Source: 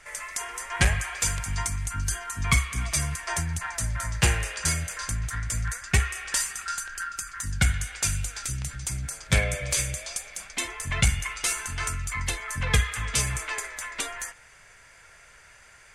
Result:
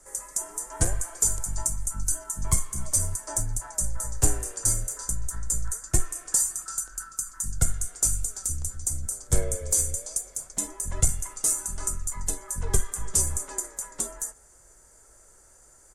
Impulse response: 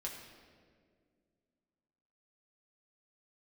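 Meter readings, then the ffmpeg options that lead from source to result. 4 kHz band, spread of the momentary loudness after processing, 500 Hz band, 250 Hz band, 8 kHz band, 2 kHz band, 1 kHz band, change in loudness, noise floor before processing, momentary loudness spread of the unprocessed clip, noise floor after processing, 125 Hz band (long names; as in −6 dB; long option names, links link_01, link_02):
−11.0 dB, 8 LU, −0.5 dB, −3.5 dB, +4.5 dB, −17.0 dB, −7.5 dB, +0.5 dB, −53 dBFS, 8 LU, −55 dBFS, −4.5 dB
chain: -af "firequalizer=gain_entry='entry(400,0);entry(2400,-25);entry(7100,4)':delay=0.05:min_phase=1,afreqshift=-54,volume=1.5dB"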